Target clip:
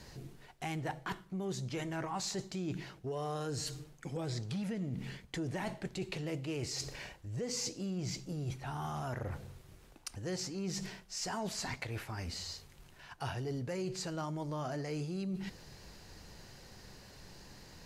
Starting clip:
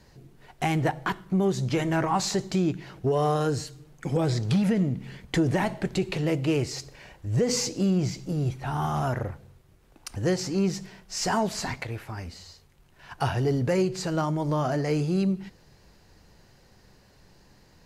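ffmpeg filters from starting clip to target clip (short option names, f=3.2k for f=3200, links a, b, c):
-af "equalizer=f=6.5k:w=0.34:g=4.5,areverse,acompressor=threshold=-41dB:ratio=4,areverse,volume=2dB"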